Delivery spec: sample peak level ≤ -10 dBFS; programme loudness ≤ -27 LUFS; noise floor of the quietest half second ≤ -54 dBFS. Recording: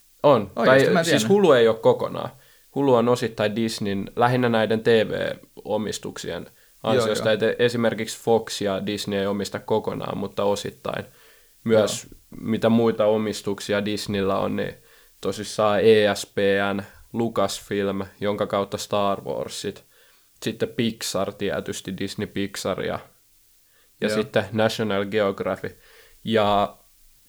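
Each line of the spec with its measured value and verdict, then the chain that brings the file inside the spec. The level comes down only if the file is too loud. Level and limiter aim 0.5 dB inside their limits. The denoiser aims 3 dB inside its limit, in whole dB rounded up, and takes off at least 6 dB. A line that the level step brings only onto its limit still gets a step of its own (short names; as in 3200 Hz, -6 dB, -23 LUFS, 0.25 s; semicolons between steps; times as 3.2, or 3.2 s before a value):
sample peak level -4.5 dBFS: fail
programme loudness -23.0 LUFS: fail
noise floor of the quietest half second -58 dBFS: OK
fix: gain -4.5 dB; limiter -10.5 dBFS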